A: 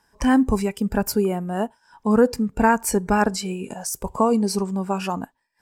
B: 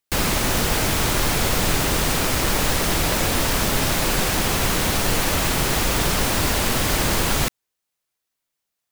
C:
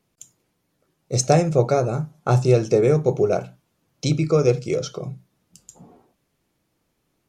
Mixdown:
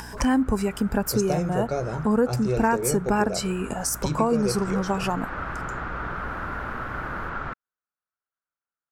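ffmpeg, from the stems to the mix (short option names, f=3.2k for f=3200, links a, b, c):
-filter_complex "[0:a]acompressor=mode=upward:threshold=-26dB:ratio=2.5,volume=2.5dB[a];[1:a]lowpass=f=1.4k:t=q:w=5.1,adelay=50,volume=-13.5dB,afade=t=in:st=4.28:d=0.23:silence=0.375837[b];[2:a]acompressor=mode=upward:threshold=-39dB:ratio=2.5,aeval=exprs='val(0)+0.0178*(sin(2*PI*60*n/s)+sin(2*PI*2*60*n/s)/2+sin(2*PI*3*60*n/s)/3+sin(2*PI*4*60*n/s)/4+sin(2*PI*5*60*n/s)/5)':c=same,volume=-5.5dB[c];[a][b][c]amix=inputs=3:normalize=0,acompressor=threshold=-23dB:ratio=2"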